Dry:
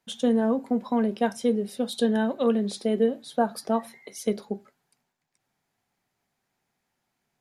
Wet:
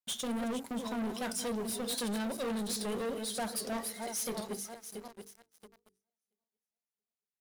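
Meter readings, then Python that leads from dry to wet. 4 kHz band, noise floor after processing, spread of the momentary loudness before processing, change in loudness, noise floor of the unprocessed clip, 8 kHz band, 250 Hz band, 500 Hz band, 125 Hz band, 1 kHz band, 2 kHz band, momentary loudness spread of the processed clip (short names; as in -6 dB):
-0.5 dB, under -85 dBFS, 7 LU, -9.5 dB, -80 dBFS, +5.5 dB, -11.0 dB, -12.0 dB, n/a, -9.5 dB, -5.0 dB, 11 LU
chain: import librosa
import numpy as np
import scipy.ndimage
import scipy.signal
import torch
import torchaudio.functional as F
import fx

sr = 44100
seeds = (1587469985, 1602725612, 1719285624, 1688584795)

y = fx.reverse_delay_fb(x, sr, ms=339, feedback_pct=56, wet_db=-12)
y = librosa.effects.preemphasis(y, coef=0.8, zi=[0.0])
y = fx.leveller(y, sr, passes=5)
y = fx.hum_notches(y, sr, base_hz=50, count=9)
y = fx.record_warp(y, sr, rpm=78.0, depth_cents=100.0)
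y = y * 10.0 ** (-8.0 / 20.0)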